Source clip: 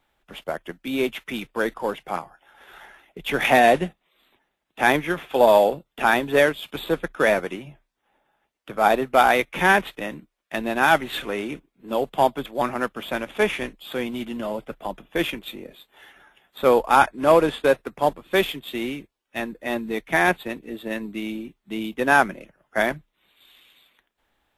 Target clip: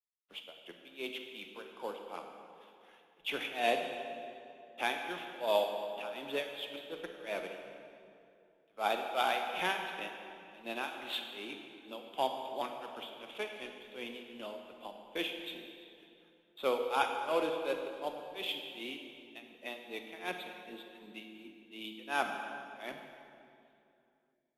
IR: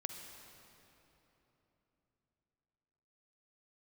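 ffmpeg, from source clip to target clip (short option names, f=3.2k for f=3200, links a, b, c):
-filter_complex "[0:a]acrossover=split=240 2700:gain=0.2 1 0.0708[a][b][c];[a][b][c]amix=inputs=3:normalize=0,agate=range=-33dB:threshold=-48dB:ratio=3:detection=peak,tremolo=f=2.7:d=0.94[d];[1:a]atrim=start_sample=2205,asetrate=61740,aresample=44100[e];[d][e]afir=irnorm=-1:irlink=0,aexciter=amount=8.9:drive=6.3:freq=2.7k,volume=-8dB"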